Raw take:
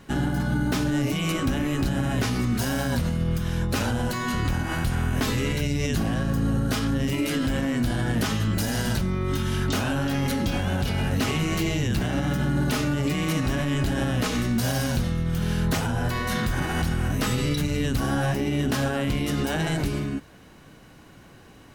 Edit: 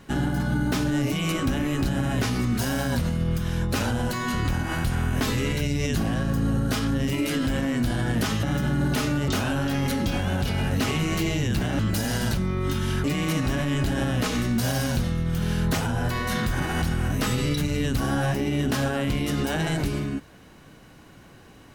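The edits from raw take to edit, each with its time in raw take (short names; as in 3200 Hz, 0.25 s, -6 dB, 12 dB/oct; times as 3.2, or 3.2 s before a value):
8.43–9.68 swap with 12.19–13.04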